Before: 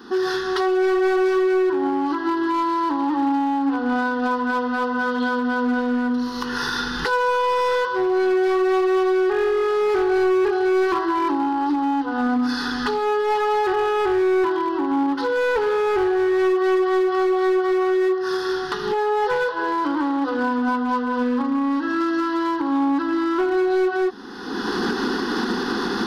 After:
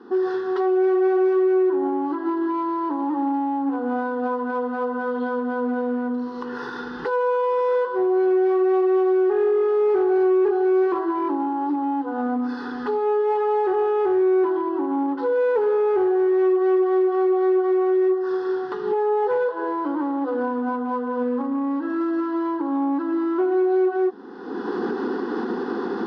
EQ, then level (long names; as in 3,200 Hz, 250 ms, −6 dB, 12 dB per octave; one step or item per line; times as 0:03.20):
resonant band-pass 480 Hz, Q 1.1
+1.5 dB